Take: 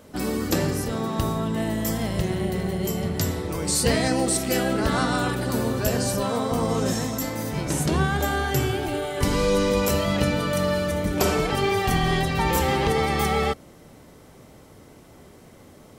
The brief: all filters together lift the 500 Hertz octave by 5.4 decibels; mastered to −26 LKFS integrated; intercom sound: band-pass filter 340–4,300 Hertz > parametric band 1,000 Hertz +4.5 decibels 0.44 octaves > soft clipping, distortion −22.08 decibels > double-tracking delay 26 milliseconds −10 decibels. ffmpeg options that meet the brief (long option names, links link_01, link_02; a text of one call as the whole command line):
ffmpeg -i in.wav -filter_complex "[0:a]highpass=340,lowpass=4300,equalizer=frequency=500:width_type=o:gain=7.5,equalizer=frequency=1000:width_type=o:width=0.44:gain=4.5,asoftclip=threshold=-11dB,asplit=2[link_01][link_02];[link_02]adelay=26,volume=-10dB[link_03];[link_01][link_03]amix=inputs=2:normalize=0,volume=-3dB" out.wav